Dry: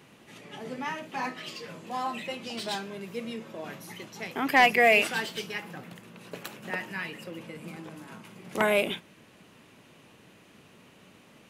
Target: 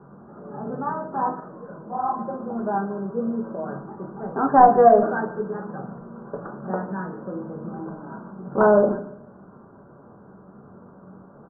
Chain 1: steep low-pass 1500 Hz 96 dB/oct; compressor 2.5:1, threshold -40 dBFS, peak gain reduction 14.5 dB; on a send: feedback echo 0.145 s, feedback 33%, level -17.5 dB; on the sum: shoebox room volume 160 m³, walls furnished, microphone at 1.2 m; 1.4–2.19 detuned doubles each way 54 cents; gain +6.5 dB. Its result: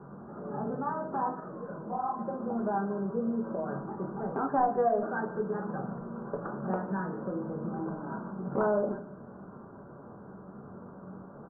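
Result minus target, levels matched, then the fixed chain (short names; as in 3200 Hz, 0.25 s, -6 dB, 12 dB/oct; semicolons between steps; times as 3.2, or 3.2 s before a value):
compressor: peak gain reduction +14.5 dB
steep low-pass 1500 Hz 96 dB/oct; on a send: feedback echo 0.145 s, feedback 33%, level -17.5 dB; on the sum: shoebox room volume 160 m³, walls furnished, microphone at 1.2 m; 1.4–2.19 detuned doubles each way 54 cents; gain +6.5 dB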